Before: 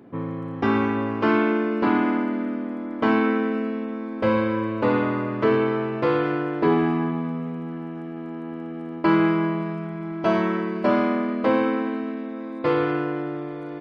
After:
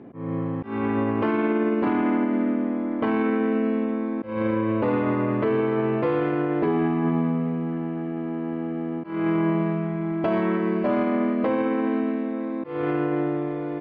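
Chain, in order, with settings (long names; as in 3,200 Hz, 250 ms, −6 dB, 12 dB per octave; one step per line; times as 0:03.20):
low-pass filter 2,500 Hz 12 dB per octave
parametric band 1,400 Hz −5.5 dB 0.42 octaves
notch filter 960 Hz, Q 19
brickwall limiter −19.5 dBFS, peak gain reduction 11 dB
volume swells 236 ms
level +4.5 dB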